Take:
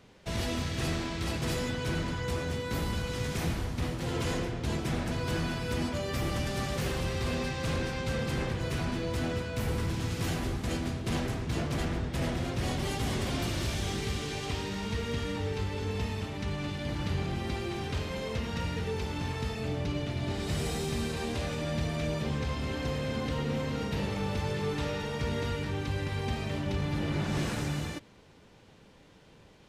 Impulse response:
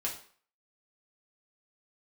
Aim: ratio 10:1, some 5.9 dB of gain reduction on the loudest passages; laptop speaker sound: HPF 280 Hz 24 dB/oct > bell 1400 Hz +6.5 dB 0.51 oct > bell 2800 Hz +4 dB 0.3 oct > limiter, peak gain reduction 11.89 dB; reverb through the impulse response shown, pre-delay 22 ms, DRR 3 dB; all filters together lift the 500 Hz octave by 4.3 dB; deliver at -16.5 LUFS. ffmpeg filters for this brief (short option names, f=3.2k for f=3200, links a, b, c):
-filter_complex "[0:a]equalizer=f=500:t=o:g=5,acompressor=threshold=-32dB:ratio=10,asplit=2[a][b];[1:a]atrim=start_sample=2205,adelay=22[c];[b][c]afir=irnorm=-1:irlink=0,volume=-6dB[d];[a][d]amix=inputs=2:normalize=0,highpass=f=280:w=0.5412,highpass=f=280:w=1.3066,equalizer=f=1.4k:t=o:w=0.51:g=6.5,equalizer=f=2.8k:t=o:w=0.3:g=4,volume=27dB,alimiter=limit=-8.5dB:level=0:latency=1"